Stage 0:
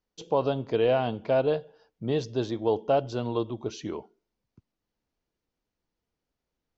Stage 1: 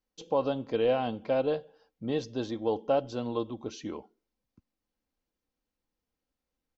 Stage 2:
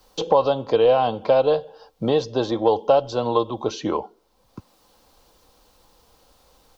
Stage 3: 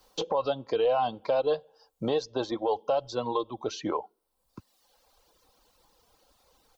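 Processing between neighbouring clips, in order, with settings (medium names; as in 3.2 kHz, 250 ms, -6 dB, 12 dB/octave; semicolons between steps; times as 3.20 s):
comb 3.8 ms, depth 40%; trim -3.5 dB
graphic EQ 250/500/1000/2000/4000 Hz -8/+3/+7/-7/+5 dB; three bands compressed up and down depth 70%; trim +8.5 dB
reverb removal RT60 1.3 s; peak limiter -12.5 dBFS, peak gain reduction 8.5 dB; bass shelf 280 Hz -4.5 dB; trim -4 dB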